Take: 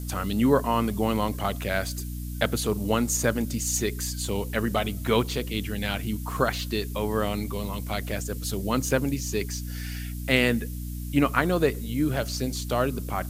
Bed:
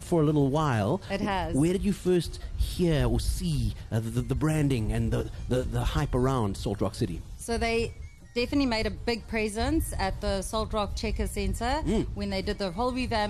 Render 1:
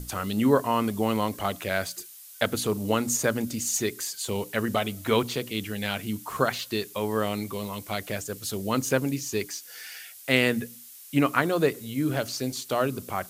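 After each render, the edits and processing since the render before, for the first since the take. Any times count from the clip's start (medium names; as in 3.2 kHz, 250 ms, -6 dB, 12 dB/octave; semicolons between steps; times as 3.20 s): hum notches 60/120/180/240/300 Hz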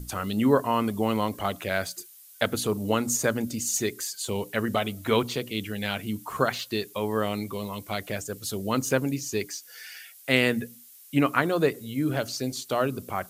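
noise reduction 6 dB, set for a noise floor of -47 dBFS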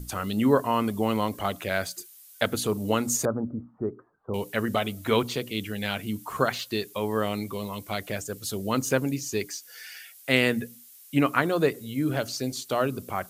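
3.25–4.34 s: Chebyshev low-pass 1.3 kHz, order 5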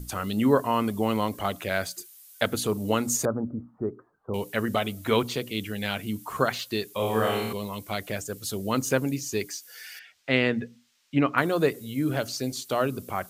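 6.96–7.53 s: flutter echo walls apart 4.6 m, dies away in 0.89 s; 9.99–11.38 s: distance through air 160 m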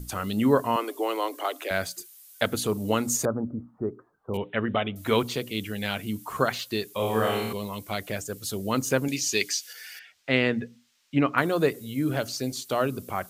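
0.76–1.71 s: steep high-pass 270 Hz 96 dB/octave; 4.37–4.96 s: steep low-pass 3.6 kHz 96 dB/octave; 9.08–9.73 s: frequency weighting D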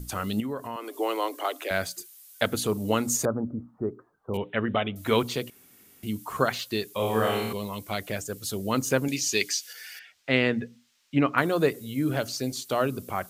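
0.40–0.97 s: compression 2.5:1, threshold -35 dBFS; 5.50–6.03 s: room tone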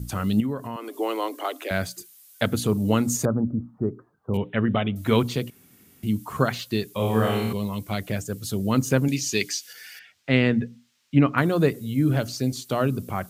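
high-pass 150 Hz 6 dB/octave; tone controls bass +14 dB, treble -1 dB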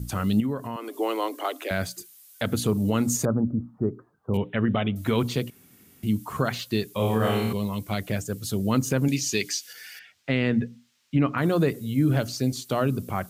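peak limiter -12.5 dBFS, peak gain reduction 8 dB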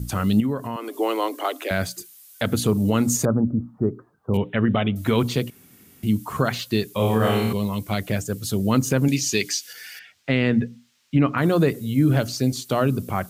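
trim +3.5 dB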